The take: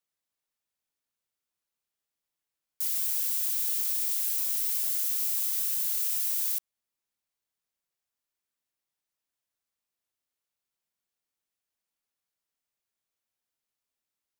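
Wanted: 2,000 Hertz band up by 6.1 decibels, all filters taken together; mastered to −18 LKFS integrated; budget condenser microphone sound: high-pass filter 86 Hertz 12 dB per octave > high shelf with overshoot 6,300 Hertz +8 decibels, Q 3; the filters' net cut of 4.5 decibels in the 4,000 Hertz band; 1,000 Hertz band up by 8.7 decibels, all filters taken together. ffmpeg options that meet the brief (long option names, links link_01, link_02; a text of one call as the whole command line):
ffmpeg -i in.wav -af "highpass=86,equalizer=frequency=1000:width_type=o:gain=9,equalizer=frequency=2000:width_type=o:gain=7.5,equalizer=frequency=4000:width_type=o:gain=-3.5,highshelf=frequency=6300:width_type=q:width=3:gain=8,volume=-1dB" out.wav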